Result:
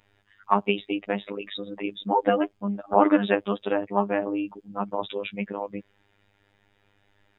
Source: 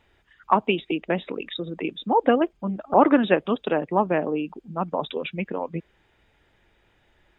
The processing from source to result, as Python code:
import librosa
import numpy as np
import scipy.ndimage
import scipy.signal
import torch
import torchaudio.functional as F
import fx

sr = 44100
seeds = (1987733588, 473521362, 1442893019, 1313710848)

y = fx.robotise(x, sr, hz=101.0)